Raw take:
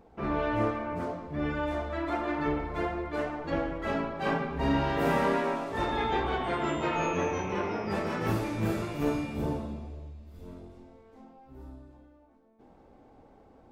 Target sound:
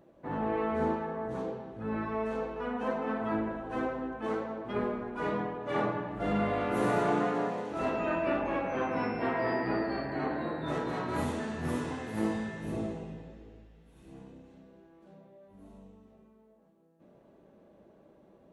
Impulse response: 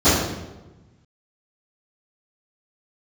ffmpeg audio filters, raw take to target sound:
-af "highpass=frequency=310:poles=1,equalizer=frequency=6800:width=6.3:gain=-7,asetrate=32667,aresample=44100"

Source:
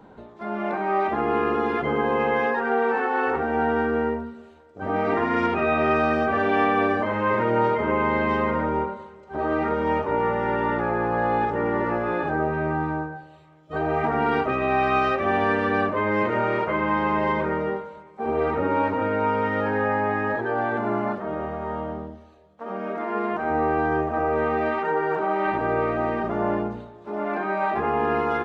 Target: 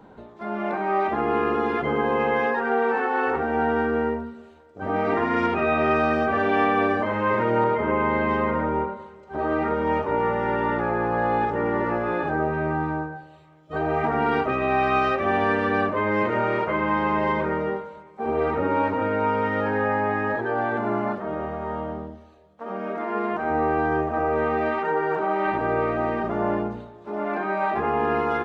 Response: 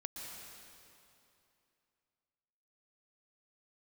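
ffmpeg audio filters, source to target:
-filter_complex "[0:a]asettb=1/sr,asplit=3[link_01][link_02][link_03];[link_01]atrim=end=7.644[link_04];[link_02]atrim=start=7.64:end=9.93,asetpts=PTS-STARTPTS,afade=type=in:duration=0.004:curve=qsin,afade=type=out:start_time=2.286:duration=0.004:curve=qsin,adynamicequalizer=threshold=0.00794:dfrequency=3000:dqfactor=0.7:tfrequency=3000:tqfactor=0.7:attack=5:release=100:ratio=0.375:range=2.5:mode=cutabove:tftype=highshelf[link_05];[link_03]atrim=start=9.926[link_06];[link_04][link_05]acrossfade=duration=0.004:curve1=hsin:curve2=qsin[link_07];[link_07][link_06]acrossfade=duration=0.004:curve1=qsin:curve2=hsin"

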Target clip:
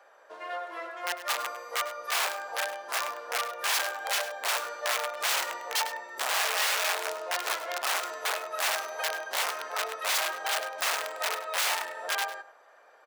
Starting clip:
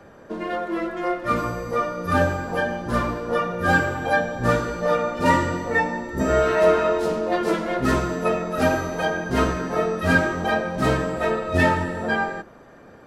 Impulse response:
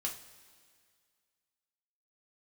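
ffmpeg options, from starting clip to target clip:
-af "aeval=exprs='(mod(5.96*val(0)+1,2)-1)/5.96':channel_layout=same,highpass=frequency=610:width=0.5412,highpass=frequency=610:width=1.3066,aecho=1:1:101:0.2,volume=-6dB"

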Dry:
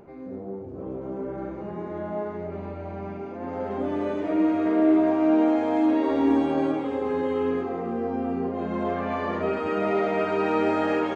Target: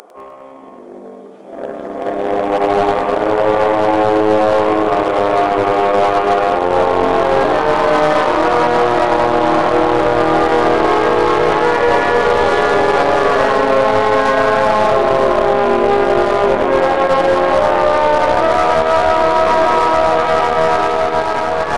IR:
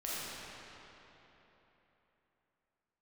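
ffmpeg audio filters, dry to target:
-filter_complex "[0:a]highpass=frequency=1100:width=0.5412,highpass=frequency=1100:width=1.3066,areverse,acompressor=threshold=-45dB:ratio=20,areverse,aeval=exprs='0.0141*(cos(1*acos(clip(val(0)/0.0141,-1,1)))-cos(1*PI/2))+0.000224*(cos(5*acos(clip(val(0)/0.0141,-1,1)))-cos(5*PI/2))+0.00141*(cos(7*acos(clip(val(0)/0.0141,-1,1)))-cos(7*PI/2))':channel_layout=same,aeval=exprs='clip(val(0),-1,0.00376)':channel_layout=same,asetrate=22579,aresample=44100,dynaudnorm=framelen=550:gausssize=7:maxgain=9.5dB,asplit=2[link_01][link_02];[link_02]aecho=0:1:101|202|303|404|505|606:0.251|0.136|0.0732|0.0396|0.0214|0.0115[link_03];[link_01][link_03]amix=inputs=2:normalize=0,alimiter=level_in=33dB:limit=-1dB:release=50:level=0:latency=1,volume=-1dB"

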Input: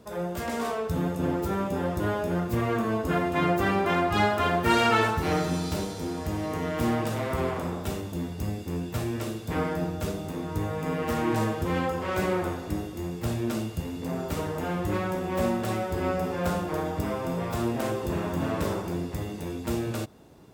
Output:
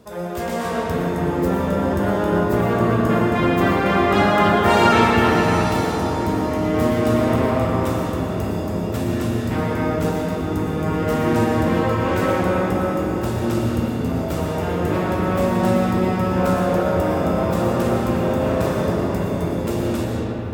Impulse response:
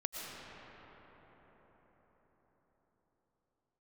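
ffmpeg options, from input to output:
-filter_complex "[1:a]atrim=start_sample=2205[link_01];[0:a][link_01]afir=irnorm=-1:irlink=0,volume=5.5dB"

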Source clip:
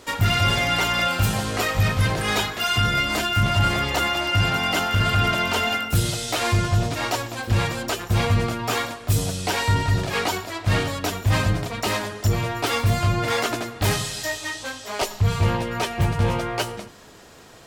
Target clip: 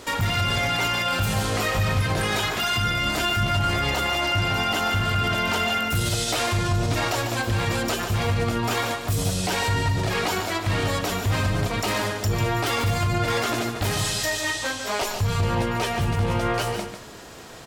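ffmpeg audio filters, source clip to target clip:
ffmpeg -i in.wav -af "alimiter=limit=-20.5dB:level=0:latency=1,aecho=1:1:146:0.398,volume=4.5dB" out.wav

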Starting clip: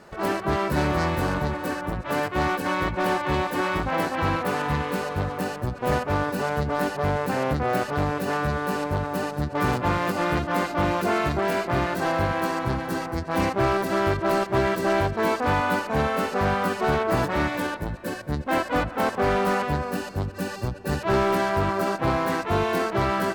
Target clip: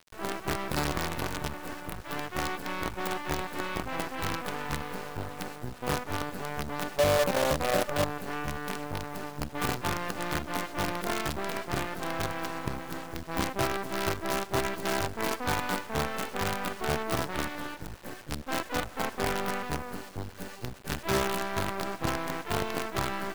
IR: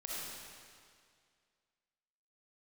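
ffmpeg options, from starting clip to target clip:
-af "asetnsamples=nb_out_samples=441:pad=0,asendcmd='6.98 equalizer g 14;8.04 equalizer g -4',equalizer=frequency=570:width_type=o:width=0.24:gain=-4,acrusher=bits=4:dc=4:mix=0:aa=0.000001,volume=-6.5dB"

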